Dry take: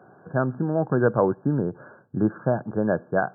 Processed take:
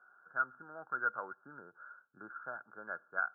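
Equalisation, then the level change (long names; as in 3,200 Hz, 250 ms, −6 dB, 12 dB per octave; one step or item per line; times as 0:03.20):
resonant band-pass 1,400 Hz, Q 15
+4.0 dB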